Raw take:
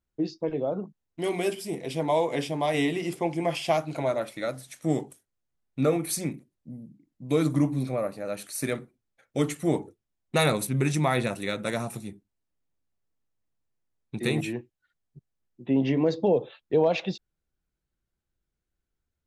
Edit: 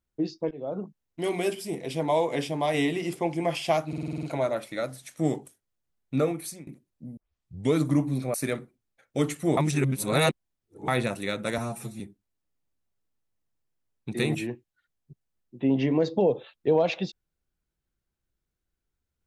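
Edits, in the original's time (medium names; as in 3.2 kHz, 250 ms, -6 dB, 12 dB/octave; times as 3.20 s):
0.51–0.82 s: fade in, from -19 dB
3.88 s: stutter 0.05 s, 8 plays
5.79–6.32 s: fade out, to -21.5 dB
6.82 s: tape start 0.56 s
7.99–8.54 s: delete
9.77–11.08 s: reverse
11.78–12.06 s: stretch 1.5×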